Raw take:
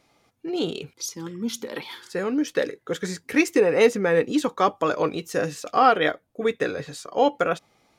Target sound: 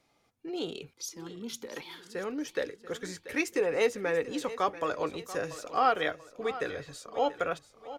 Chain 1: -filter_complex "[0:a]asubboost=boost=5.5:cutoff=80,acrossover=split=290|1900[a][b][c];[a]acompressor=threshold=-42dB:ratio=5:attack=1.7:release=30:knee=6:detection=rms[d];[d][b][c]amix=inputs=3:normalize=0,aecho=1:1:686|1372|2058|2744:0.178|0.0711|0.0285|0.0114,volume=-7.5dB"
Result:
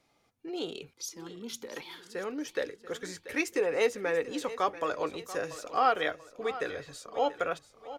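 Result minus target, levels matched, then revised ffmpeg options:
compressor: peak gain reduction +5.5 dB
-filter_complex "[0:a]asubboost=boost=5.5:cutoff=80,acrossover=split=290|1900[a][b][c];[a]acompressor=threshold=-35dB:ratio=5:attack=1.7:release=30:knee=6:detection=rms[d];[d][b][c]amix=inputs=3:normalize=0,aecho=1:1:686|1372|2058|2744:0.178|0.0711|0.0285|0.0114,volume=-7.5dB"

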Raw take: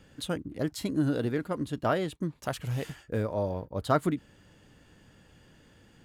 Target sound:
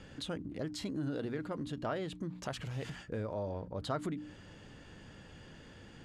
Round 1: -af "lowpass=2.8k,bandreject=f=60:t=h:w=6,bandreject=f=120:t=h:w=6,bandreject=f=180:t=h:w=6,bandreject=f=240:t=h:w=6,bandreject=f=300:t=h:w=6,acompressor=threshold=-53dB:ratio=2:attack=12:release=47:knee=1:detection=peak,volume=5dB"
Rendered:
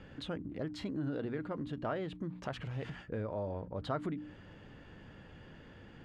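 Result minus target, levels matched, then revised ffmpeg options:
8000 Hz band -11.5 dB
-af "lowpass=6.7k,bandreject=f=60:t=h:w=6,bandreject=f=120:t=h:w=6,bandreject=f=180:t=h:w=6,bandreject=f=240:t=h:w=6,bandreject=f=300:t=h:w=6,acompressor=threshold=-53dB:ratio=2:attack=12:release=47:knee=1:detection=peak,volume=5dB"

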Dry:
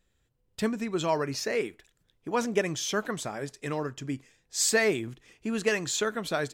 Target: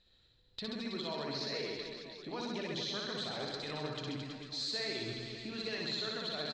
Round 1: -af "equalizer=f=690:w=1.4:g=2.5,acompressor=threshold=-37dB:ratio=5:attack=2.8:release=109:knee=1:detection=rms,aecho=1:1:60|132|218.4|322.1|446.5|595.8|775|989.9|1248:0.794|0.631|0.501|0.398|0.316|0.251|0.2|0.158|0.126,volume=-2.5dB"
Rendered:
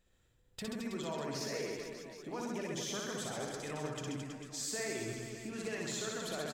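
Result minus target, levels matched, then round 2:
4000 Hz band -6.0 dB
-af "lowpass=f=4.1k:t=q:w=14,equalizer=f=690:w=1.4:g=2.5,acompressor=threshold=-37dB:ratio=5:attack=2.8:release=109:knee=1:detection=rms,aecho=1:1:60|132|218.4|322.1|446.5|595.8|775|989.9|1248:0.794|0.631|0.501|0.398|0.316|0.251|0.2|0.158|0.126,volume=-2.5dB"

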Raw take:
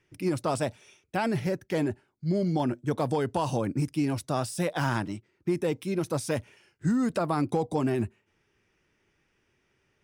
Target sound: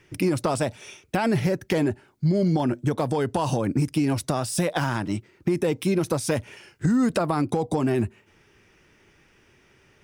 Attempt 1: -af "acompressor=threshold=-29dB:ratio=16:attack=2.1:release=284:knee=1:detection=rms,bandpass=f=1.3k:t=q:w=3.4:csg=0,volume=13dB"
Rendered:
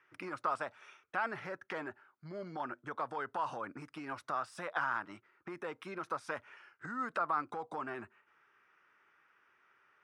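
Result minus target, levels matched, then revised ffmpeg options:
1000 Hz band +8.0 dB
-af "acompressor=threshold=-29dB:ratio=16:attack=2.1:release=284:knee=1:detection=rms,volume=13dB"

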